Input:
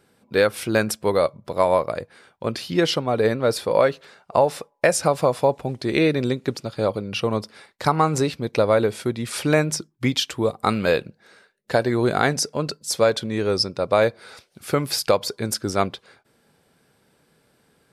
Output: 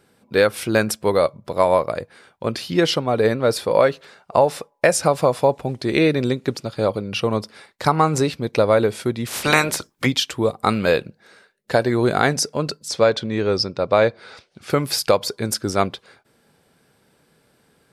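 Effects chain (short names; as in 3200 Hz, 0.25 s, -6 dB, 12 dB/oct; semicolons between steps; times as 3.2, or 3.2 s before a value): 9.26–10.05 spectral limiter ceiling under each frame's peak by 22 dB; 12.88–14.7 LPF 5600 Hz 12 dB/oct; gain +2 dB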